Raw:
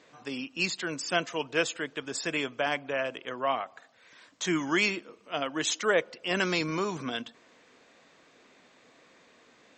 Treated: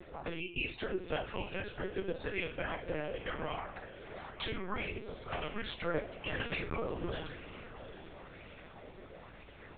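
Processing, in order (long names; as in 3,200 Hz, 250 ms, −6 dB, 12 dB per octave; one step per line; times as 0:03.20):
gate on every frequency bin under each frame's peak −30 dB strong
spectral tilt −2.5 dB per octave
hum removal 116.4 Hz, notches 19
harmonic and percussive parts rebalanced percussive +8 dB
downward compressor 6 to 1, threshold −36 dBFS, peak gain reduction 22 dB
ring modulation 83 Hz
feedback delay with all-pass diffusion 787 ms, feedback 45%, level −12.5 dB
convolution reverb, pre-delay 3 ms, DRR 3.5 dB
linear-prediction vocoder at 8 kHz pitch kept
auto-filter bell 1 Hz 350–2,800 Hz +7 dB
level +1 dB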